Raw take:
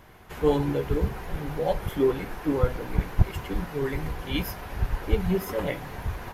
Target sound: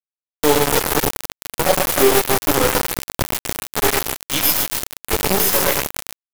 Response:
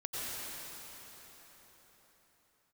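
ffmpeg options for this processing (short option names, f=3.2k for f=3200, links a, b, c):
-filter_complex "[0:a]highpass=60,asplit=2[a][b];[b]adelay=30,volume=-8dB[c];[a][c]amix=inputs=2:normalize=0,acrossover=split=250|6400[d][e][f];[f]acontrast=77[g];[d][e][g]amix=inputs=3:normalize=0,bass=f=250:g=-12,treble=f=4k:g=8,aecho=1:1:110.8|274.1:0.562|0.355,asplit=2[h][i];[1:a]atrim=start_sample=2205,lowshelf=f=160:g=6.5[j];[i][j]afir=irnorm=-1:irlink=0,volume=-15.5dB[k];[h][k]amix=inputs=2:normalize=0,aeval=exprs='0.316*(cos(1*acos(clip(val(0)/0.316,-1,1)))-cos(1*PI/2))+0.0126*(cos(2*acos(clip(val(0)/0.316,-1,1)))-cos(2*PI/2))+0.00794*(cos(3*acos(clip(val(0)/0.316,-1,1)))-cos(3*PI/2))+0.0355*(cos(6*acos(clip(val(0)/0.316,-1,1)))-cos(6*PI/2))+0.0112*(cos(8*acos(clip(val(0)/0.316,-1,1)))-cos(8*PI/2))':c=same,equalizer=f=5.2k:w=6.9:g=4.5,acrusher=bits=3:mix=0:aa=0.000001,alimiter=level_in=13.5dB:limit=-1dB:release=50:level=0:latency=1,volume=-3dB"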